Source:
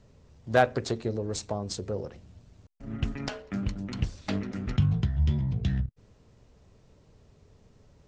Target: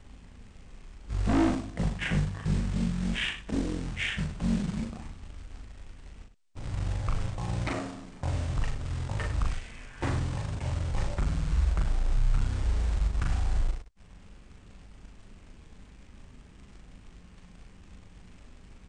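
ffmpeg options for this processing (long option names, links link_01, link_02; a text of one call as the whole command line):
ffmpeg -i in.wav -filter_complex "[0:a]asplit=2[link_01][link_02];[link_02]acompressor=threshold=-39dB:ratio=8,volume=1dB[link_03];[link_01][link_03]amix=inputs=2:normalize=0,acrusher=bits=3:mode=log:mix=0:aa=0.000001,asoftclip=type=hard:threshold=-23.5dB,aecho=1:1:17|43:0.668|0.266,asetrate=18846,aresample=44100" out.wav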